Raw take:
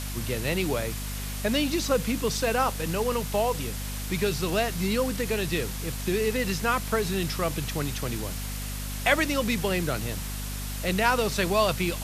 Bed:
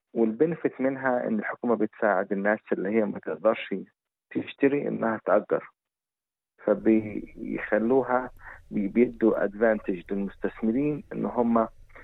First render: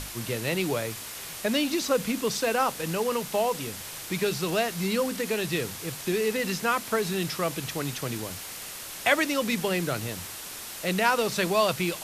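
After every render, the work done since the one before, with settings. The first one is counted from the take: notches 50/100/150/200/250 Hz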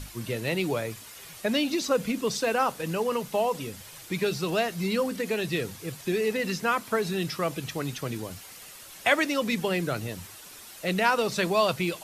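denoiser 9 dB, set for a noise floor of -39 dBFS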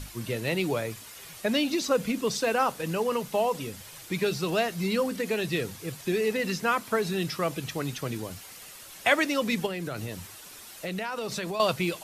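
9.66–11.6 compressor, threshold -29 dBFS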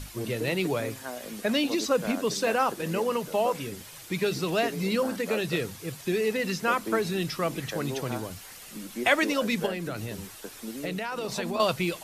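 add bed -13 dB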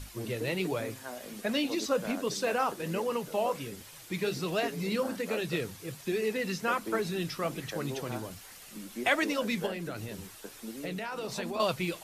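flange 1.3 Hz, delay 2 ms, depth 9.5 ms, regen -65%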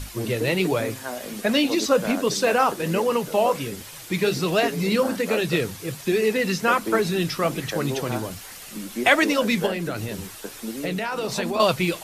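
gain +9.5 dB

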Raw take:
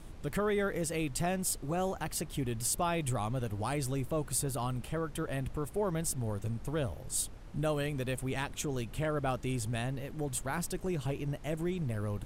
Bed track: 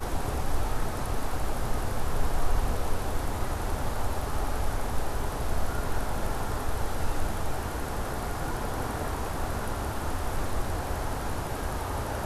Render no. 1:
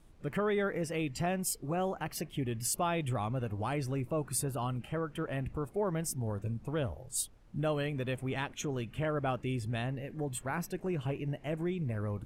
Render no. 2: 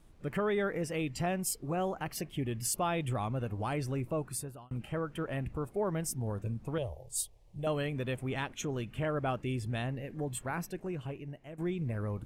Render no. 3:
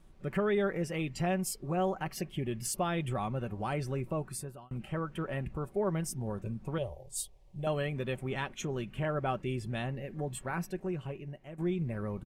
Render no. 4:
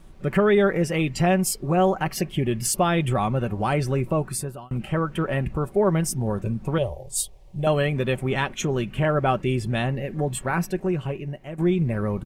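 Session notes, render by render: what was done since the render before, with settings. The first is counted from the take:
noise print and reduce 12 dB
4.13–4.71 fade out; 6.78–7.67 fixed phaser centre 590 Hz, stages 4; 10.43–11.58 fade out linear, to -13 dB
high shelf 6200 Hz -5 dB; comb 5.3 ms, depth 41%
gain +11 dB

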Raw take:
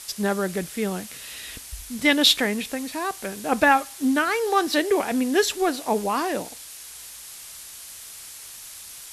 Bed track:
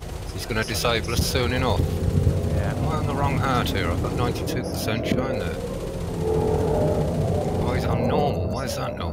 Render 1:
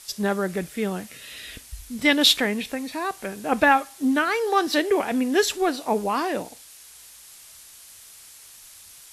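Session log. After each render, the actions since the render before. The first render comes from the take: noise print and reduce 6 dB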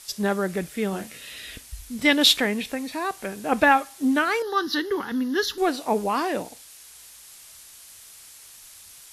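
0.89–1.31 doubler 36 ms -7 dB; 4.42–5.58 fixed phaser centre 2400 Hz, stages 6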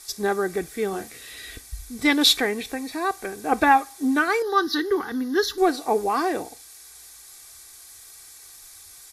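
bell 2900 Hz -12.5 dB 0.24 oct; comb 2.6 ms, depth 55%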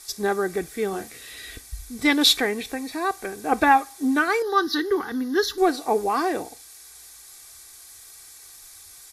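nothing audible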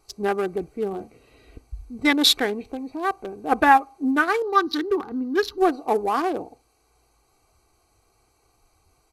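Wiener smoothing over 25 samples; dynamic EQ 1200 Hz, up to +3 dB, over -31 dBFS, Q 0.83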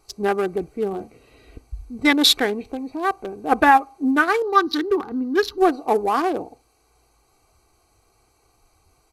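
gain +2.5 dB; limiter -3 dBFS, peak gain reduction 3 dB

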